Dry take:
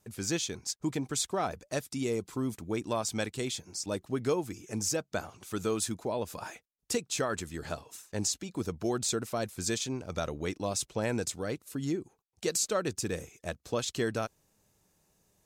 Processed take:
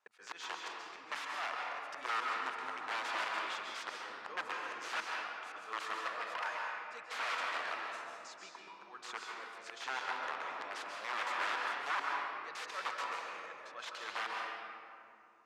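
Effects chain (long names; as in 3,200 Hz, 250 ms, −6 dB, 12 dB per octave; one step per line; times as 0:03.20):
0:05.84–0:06.32: lower of the sound and its delayed copy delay 1.6 ms
0:07.64–0:09.53: downward compressor 4 to 1, threshold −39 dBFS, peak gain reduction 11 dB
brickwall limiter −22.5 dBFS, peak gain reduction 5.5 dB
volume swells 221 ms
leveller curve on the samples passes 1
wrap-around overflow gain 29 dB
four-pole ladder band-pass 1,500 Hz, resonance 25%
convolution reverb RT60 2.6 s, pre-delay 126 ms, DRR −1.5 dB
level +11.5 dB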